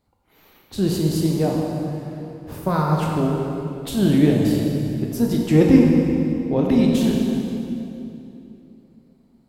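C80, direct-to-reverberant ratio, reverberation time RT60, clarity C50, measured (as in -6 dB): 1.5 dB, -1.0 dB, 3.0 s, 0.5 dB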